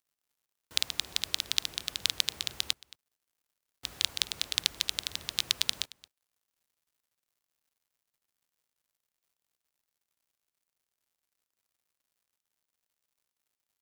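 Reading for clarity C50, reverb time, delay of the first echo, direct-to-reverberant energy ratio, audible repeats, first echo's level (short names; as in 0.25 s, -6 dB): none, none, 0.223 s, none, 1, -21.5 dB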